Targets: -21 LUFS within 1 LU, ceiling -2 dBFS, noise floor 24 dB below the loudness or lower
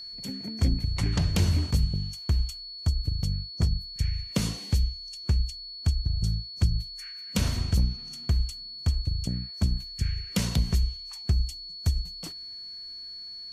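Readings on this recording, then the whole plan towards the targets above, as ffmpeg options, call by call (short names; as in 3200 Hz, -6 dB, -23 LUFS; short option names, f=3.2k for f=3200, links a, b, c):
steady tone 4400 Hz; tone level -38 dBFS; loudness -29.5 LUFS; peak -13.0 dBFS; loudness target -21.0 LUFS
-> -af "bandreject=f=4.4k:w=30"
-af "volume=8.5dB"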